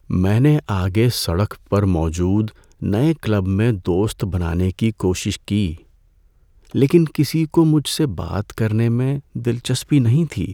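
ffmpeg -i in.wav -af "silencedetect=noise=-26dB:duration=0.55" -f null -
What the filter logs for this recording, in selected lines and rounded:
silence_start: 5.74
silence_end: 6.75 | silence_duration: 1.01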